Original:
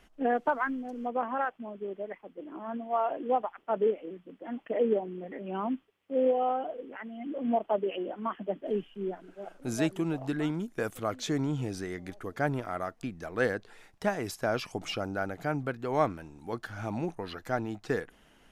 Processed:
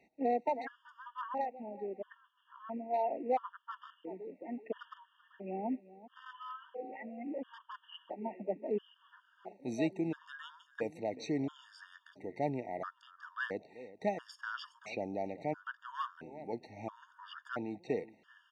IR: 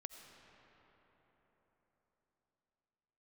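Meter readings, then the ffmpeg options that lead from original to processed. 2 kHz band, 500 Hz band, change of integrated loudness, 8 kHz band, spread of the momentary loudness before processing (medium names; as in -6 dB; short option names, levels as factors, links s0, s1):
-8.0 dB, -8.0 dB, -7.0 dB, -14.5 dB, 11 LU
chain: -filter_complex "[0:a]asoftclip=type=hard:threshold=0.0944,highpass=180,lowpass=4200,asplit=2[s0][s1];[s1]adelay=384,lowpass=f=2500:p=1,volume=0.141,asplit=2[s2][s3];[s3]adelay=384,lowpass=f=2500:p=1,volume=0.27,asplit=2[s4][s5];[s5]adelay=384,lowpass=f=2500:p=1,volume=0.27[s6];[s0][s2][s4][s6]amix=inputs=4:normalize=0,afftfilt=real='re*gt(sin(2*PI*0.74*pts/sr)*(1-2*mod(floor(b*sr/1024/920),2)),0)':imag='im*gt(sin(2*PI*0.74*pts/sr)*(1-2*mod(floor(b*sr/1024/920),2)),0)':win_size=1024:overlap=0.75,volume=0.708"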